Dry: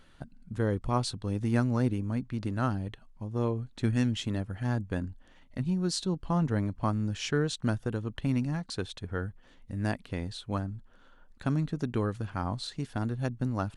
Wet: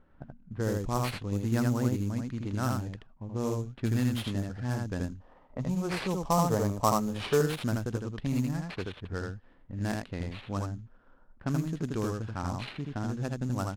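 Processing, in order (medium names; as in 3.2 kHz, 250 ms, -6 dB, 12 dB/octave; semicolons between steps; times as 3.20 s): on a send: delay 80 ms -3 dB; on the sum: time-frequency box 5.19–7.41 s, 390–1300 Hz +9 dB; sample-rate reducer 6.8 kHz, jitter 20%; level-controlled noise filter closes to 1.1 kHz, open at -23 dBFS; trim -2.5 dB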